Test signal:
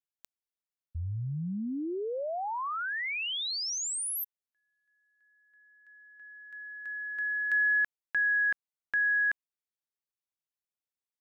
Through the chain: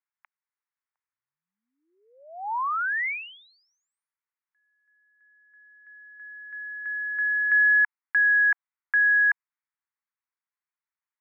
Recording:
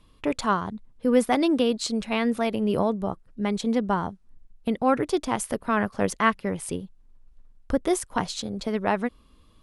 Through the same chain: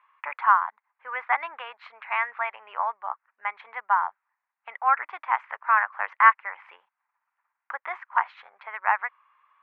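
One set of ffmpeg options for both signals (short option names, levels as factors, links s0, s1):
-af "asuperpass=centerf=1400:order=8:qfactor=1,volume=2.24"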